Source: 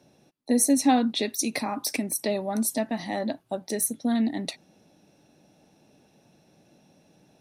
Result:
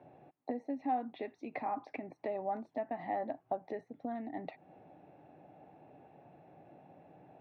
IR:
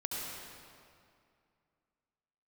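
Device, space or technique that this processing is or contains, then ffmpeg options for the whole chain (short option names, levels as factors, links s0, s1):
bass amplifier: -af "acompressor=threshold=0.0112:ratio=4,highpass=83,equalizer=f=210:t=q:w=4:g=-10,equalizer=f=750:t=q:w=4:g=9,equalizer=f=1500:t=q:w=4:g=-4,lowpass=f=2100:w=0.5412,lowpass=f=2100:w=1.3066,volume=1.26"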